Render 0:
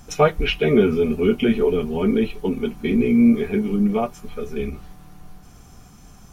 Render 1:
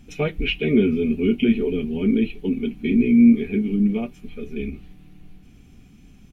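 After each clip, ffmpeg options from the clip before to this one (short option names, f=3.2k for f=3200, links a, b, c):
-af "firequalizer=gain_entry='entry(150,0);entry(260,6);entry(430,-3);entry(660,-10);entry(1100,-14);entry(2400,4);entry(5300,-10)':delay=0.05:min_phase=1,volume=-3dB"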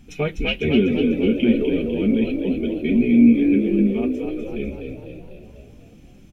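-filter_complex "[0:a]asplit=8[a][b][c][d][e][f][g][h];[b]adelay=249,afreqshift=51,volume=-6dB[i];[c]adelay=498,afreqshift=102,volume=-11.5dB[j];[d]adelay=747,afreqshift=153,volume=-17dB[k];[e]adelay=996,afreqshift=204,volume=-22.5dB[l];[f]adelay=1245,afreqshift=255,volume=-28.1dB[m];[g]adelay=1494,afreqshift=306,volume=-33.6dB[n];[h]adelay=1743,afreqshift=357,volume=-39.1dB[o];[a][i][j][k][l][m][n][o]amix=inputs=8:normalize=0"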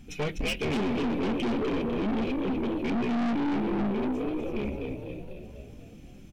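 -af "aeval=exprs='(tanh(20*val(0)+0.35)-tanh(0.35))/20':c=same"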